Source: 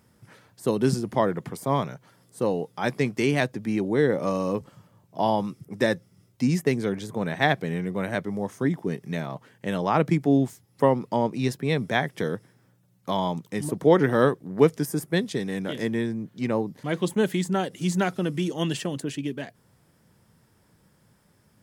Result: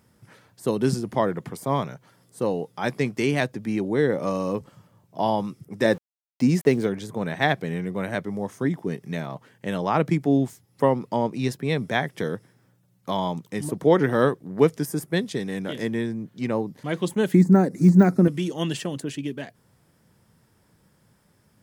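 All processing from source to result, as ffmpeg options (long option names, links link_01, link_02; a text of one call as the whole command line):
ffmpeg -i in.wav -filter_complex "[0:a]asettb=1/sr,asplit=3[link_01][link_02][link_03];[link_01]atrim=end=5.854[link_04];[link_02]atrim=start=5.85:end=6.87,asetpts=PTS-STARTPTS,afade=type=in:duration=0.004:curve=qsin,afade=type=out:start_time=1.016:duration=0.004:curve=qsin,aeval=exprs='val(0)*gte(abs(val(0)),0.00631)':channel_layout=same,equalizer=frequency=440:width=0.53:gain=5[link_05];[link_03]atrim=start=6.866[link_06];[link_04][link_05]acrossfade=duration=0.004:curve1=hsin:curve2=qsin[link_07];[link_07][link_06]acrossfade=duration=0.004:curve1=qsin:curve2=hsin,asettb=1/sr,asplit=3[link_08][link_09][link_10];[link_08]atrim=end=17.344[link_11];[link_09]atrim=start=17.34:end=18.28,asetpts=PTS-STARTPTS,afade=type=in:duration=0.004:curve=qsin,afade=type=out:start_time=0.936:duration=0.004:curve=qsin,asuperstop=centerf=3100:order=4:qfactor=1.6,equalizer=frequency=230:width=0.77:gain=13,deesser=0.95[link_12];[link_10]atrim=start=18.276[link_13];[link_11][link_12]acrossfade=duration=0.004:curve1=hsin:curve2=qsin[link_14];[link_14][link_13]acrossfade=duration=0.004:curve1=qsin:curve2=hsin" out.wav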